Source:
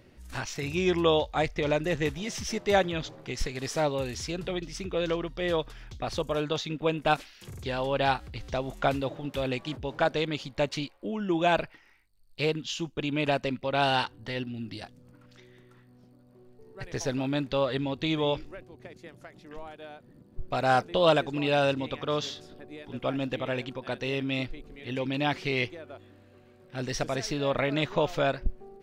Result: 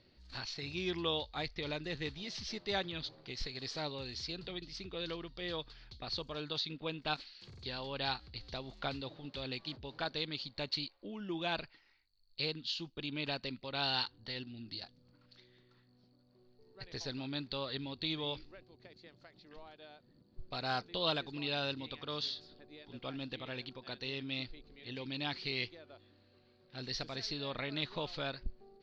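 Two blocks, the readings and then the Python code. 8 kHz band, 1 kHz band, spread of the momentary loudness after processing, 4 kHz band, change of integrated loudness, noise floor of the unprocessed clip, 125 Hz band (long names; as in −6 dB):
−14.0 dB, −13.0 dB, 15 LU, −2.5 dB, −10.0 dB, −57 dBFS, −11.5 dB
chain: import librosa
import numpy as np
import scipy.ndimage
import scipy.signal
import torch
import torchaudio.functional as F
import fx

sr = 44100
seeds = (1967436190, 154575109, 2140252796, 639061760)

y = fx.ladder_lowpass(x, sr, hz=4600.0, resonance_pct=80)
y = fx.dynamic_eq(y, sr, hz=600.0, q=1.9, threshold_db=-52.0, ratio=4.0, max_db=-5)
y = y * librosa.db_to_amplitude(1.0)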